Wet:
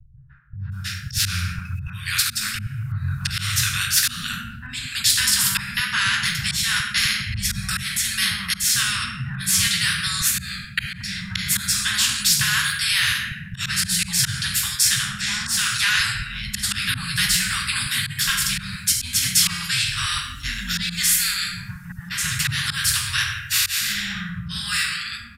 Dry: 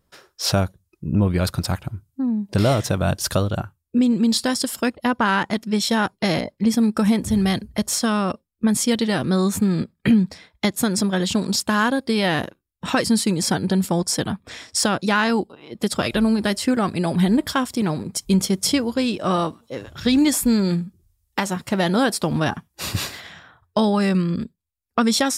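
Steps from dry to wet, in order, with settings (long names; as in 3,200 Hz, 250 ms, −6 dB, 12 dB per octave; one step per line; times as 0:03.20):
fade-out on the ending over 0.70 s
pitch vibrato 0.37 Hz 6.6 cents
convolution reverb RT60 0.65 s, pre-delay 7 ms, DRR −1.5 dB
volume swells 259 ms
Chebyshev band-stop filter 140–1,500 Hz, order 4
three-band delay without the direct sound lows, mids, highs 170/720 ms, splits 190/830 Hz
every bin compressed towards the loudest bin 2 to 1
level +1.5 dB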